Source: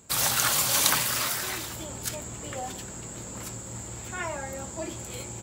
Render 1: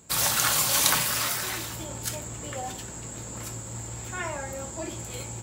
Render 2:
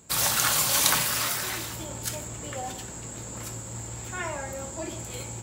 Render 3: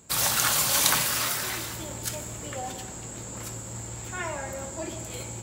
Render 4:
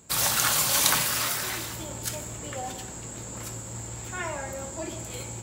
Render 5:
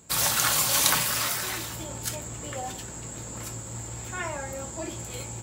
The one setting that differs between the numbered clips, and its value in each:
gated-style reverb, gate: 130 ms, 210 ms, 500 ms, 320 ms, 90 ms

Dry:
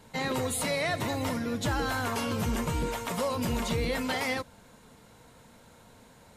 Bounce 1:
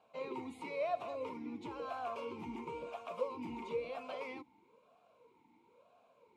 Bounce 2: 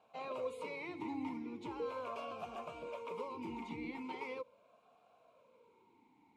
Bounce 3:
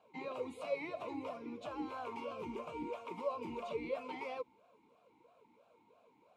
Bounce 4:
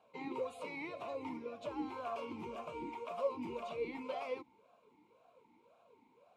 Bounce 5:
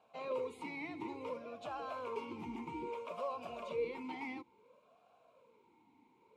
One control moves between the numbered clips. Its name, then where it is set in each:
talking filter, rate: 1 Hz, 0.4 Hz, 3 Hz, 1.9 Hz, 0.59 Hz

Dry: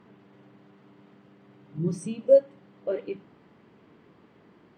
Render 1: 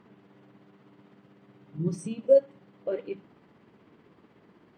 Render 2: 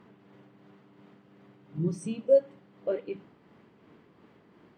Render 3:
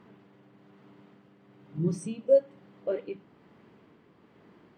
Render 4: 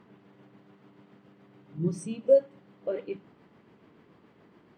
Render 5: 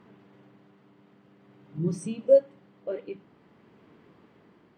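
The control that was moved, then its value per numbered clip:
tremolo, rate: 16 Hz, 2.8 Hz, 1.1 Hz, 7 Hz, 0.5 Hz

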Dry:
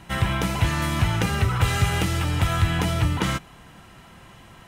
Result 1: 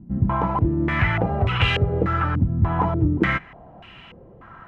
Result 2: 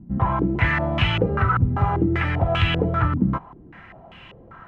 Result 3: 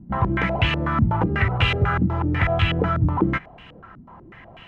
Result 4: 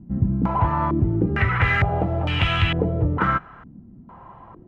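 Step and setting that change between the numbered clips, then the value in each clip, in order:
step-sequenced low-pass, rate: 3.4 Hz, 5.1 Hz, 8.1 Hz, 2.2 Hz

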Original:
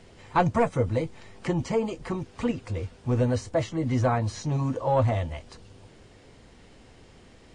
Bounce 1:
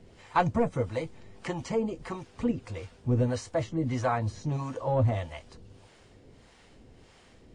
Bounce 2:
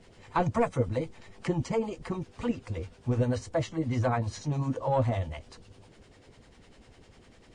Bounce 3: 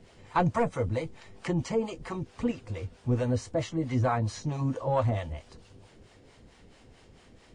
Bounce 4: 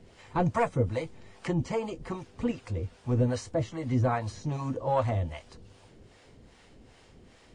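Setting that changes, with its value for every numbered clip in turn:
harmonic tremolo, rate: 1.6 Hz, 10 Hz, 4.5 Hz, 2.5 Hz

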